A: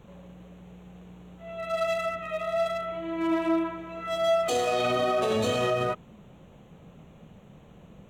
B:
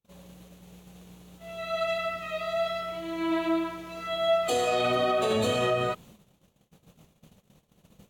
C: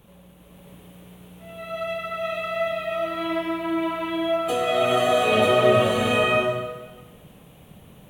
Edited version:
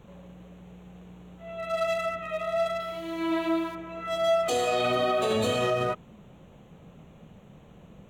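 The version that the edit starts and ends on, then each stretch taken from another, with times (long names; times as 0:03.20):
A
0:02.80–0:03.75: punch in from B
0:04.54–0:05.63: punch in from B
not used: C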